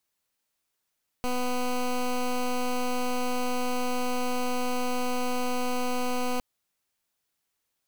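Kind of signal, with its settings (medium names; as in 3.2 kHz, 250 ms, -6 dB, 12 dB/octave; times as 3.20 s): pulse 249 Hz, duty 14% -27 dBFS 5.16 s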